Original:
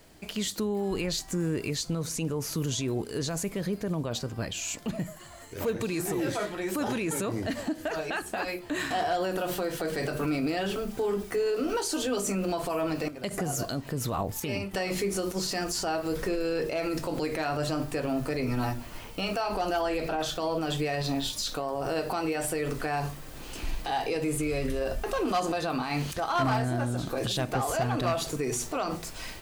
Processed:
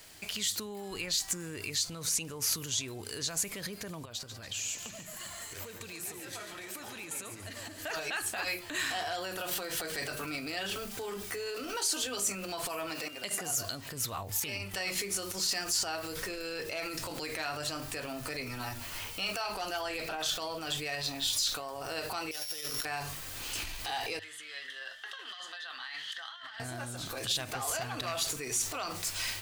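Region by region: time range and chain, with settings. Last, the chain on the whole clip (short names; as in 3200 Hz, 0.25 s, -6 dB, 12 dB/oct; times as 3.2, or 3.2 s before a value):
4.05–7.82 compressor 8:1, threshold -40 dBFS + split-band echo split 660 Hz, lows 0.272 s, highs 0.143 s, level -9 dB
12.89–13.5 HPF 200 Hz + whine 2800 Hz -52 dBFS
22.31–22.85 sample sorter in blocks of 8 samples + tilt +1.5 dB/oct + negative-ratio compressor -37 dBFS, ratio -0.5
24.19–26.6 double band-pass 2400 Hz, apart 0.8 oct + negative-ratio compressor -47 dBFS
whole clip: bell 99 Hz +13 dB 0.26 oct; limiter -27.5 dBFS; tilt shelf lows -8.5 dB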